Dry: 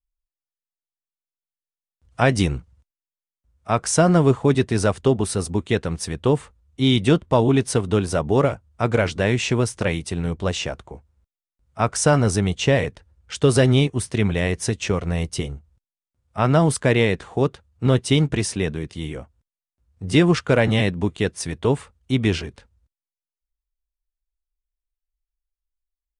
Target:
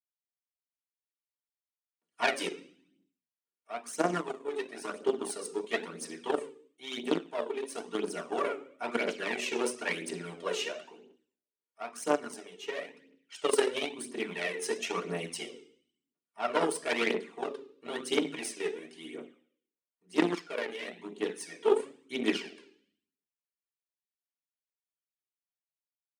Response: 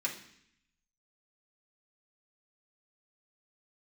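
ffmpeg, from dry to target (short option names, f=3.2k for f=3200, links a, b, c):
-filter_complex "[1:a]atrim=start_sample=2205,asetrate=52920,aresample=44100[a];[0:a][a]afir=irnorm=-1:irlink=0,aeval=exprs='0.708*(cos(1*acos(clip(val(0)/0.708,-1,1)))-cos(1*PI/2))+0.2*(cos(3*acos(clip(val(0)/0.708,-1,1)))-cos(3*PI/2))+0.0251*(cos(4*acos(clip(val(0)/0.708,-1,1)))-cos(4*PI/2))+0.00447*(cos(5*acos(clip(val(0)/0.708,-1,1)))-cos(5*PI/2))':c=same,aphaser=in_gain=1:out_gain=1:delay=2.5:decay=0.55:speed=0.99:type=triangular,dynaudnorm=f=220:g=7:m=11.5dB,highpass=f=260:w=0.5412,highpass=f=260:w=1.3066,volume=-7.5dB"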